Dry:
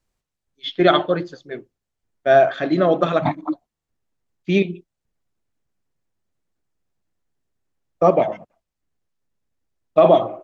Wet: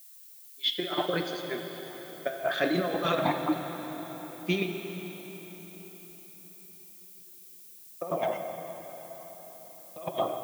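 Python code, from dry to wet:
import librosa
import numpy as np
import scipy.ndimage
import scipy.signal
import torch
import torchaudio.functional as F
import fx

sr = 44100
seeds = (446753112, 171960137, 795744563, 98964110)

y = fx.highpass(x, sr, hz=240.0, slope=6)
y = fx.high_shelf(y, sr, hz=2800.0, db=8.0)
y = fx.over_compress(y, sr, threshold_db=-20.0, ratio=-0.5)
y = fx.dmg_noise_colour(y, sr, seeds[0], colour='violet', level_db=-44.0)
y = fx.rev_plate(y, sr, seeds[1], rt60_s=4.9, hf_ratio=0.9, predelay_ms=0, drr_db=4.5)
y = y * librosa.db_to_amplitude(-8.0)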